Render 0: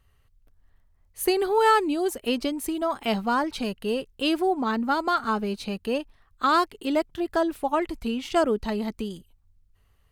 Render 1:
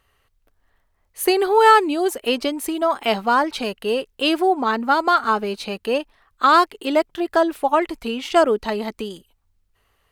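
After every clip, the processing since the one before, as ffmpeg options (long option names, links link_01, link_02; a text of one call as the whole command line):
ffmpeg -i in.wav -af "bass=frequency=250:gain=-13,treble=frequency=4000:gain=-3,volume=7.5dB" out.wav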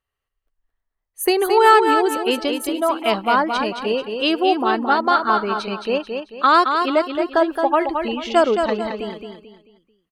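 ffmpeg -i in.wav -filter_complex "[0:a]afftdn=noise_reduction=19:noise_floor=-40,asplit=2[link_01][link_02];[link_02]aecho=0:1:220|440|660|880:0.501|0.175|0.0614|0.0215[link_03];[link_01][link_03]amix=inputs=2:normalize=0" out.wav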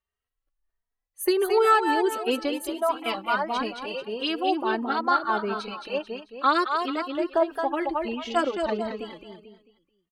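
ffmpeg -i in.wav -filter_complex "[0:a]asplit=2[link_01][link_02];[link_02]adelay=2.9,afreqshift=1.5[link_03];[link_01][link_03]amix=inputs=2:normalize=1,volume=-4dB" out.wav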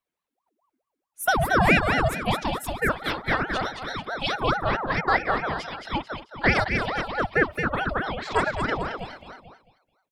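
ffmpeg -i in.wav -af "aeval=exprs='val(0)*sin(2*PI*700*n/s+700*0.65/4.6*sin(2*PI*4.6*n/s))':channel_layout=same,volume=3.5dB" out.wav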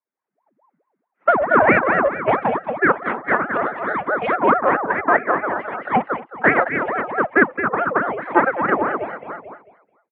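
ffmpeg -i in.wav -af "aeval=exprs='0.501*(cos(1*acos(clip(val(0)/0.501,-1,1)))-cos(1*PI/2))+0.1*(cos(2*acos(clip(val(0)/0.501,-1,1)))-cos(2*PI/2))+0.0224*(cos(7*acos(clip(val(0)/0.501,-1,1)))-cos(7*PI/2))+0.00316*(cos(8*acos(clip(val(0)/0.501,-1,1)))-cos(8*PI/2))':channel_layout=same,highpass=frequency=310:width_type=q:width=0.5412,highpass=frequency=310:width_type=q:width=1.307,lowpass=frequency=2100:width_type=q:width=0.5176,lowpass=frequency=2100:width_type=q:width=0.7071,lowpass=frequency=2100:width_type=q:width=1.932,afreqshift=-88,dynaudnorm=framelen=140:gausssize=5:maxgain=17dB,volume=-1dB" out.wav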